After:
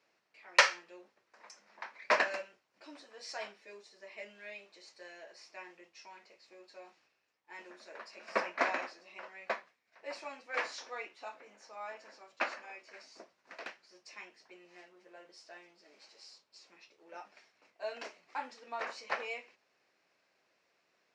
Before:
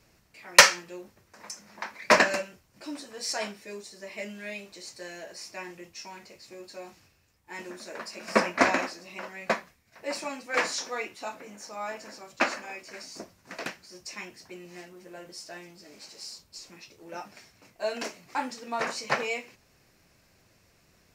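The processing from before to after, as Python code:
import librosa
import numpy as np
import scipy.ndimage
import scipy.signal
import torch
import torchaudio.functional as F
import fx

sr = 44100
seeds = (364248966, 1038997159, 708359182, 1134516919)

y = fx.bandpass_edges(x, sr, low_hz=440.0, high_hz=4200.0)
y = y * 10.0 ** (-8.0 / 20.0)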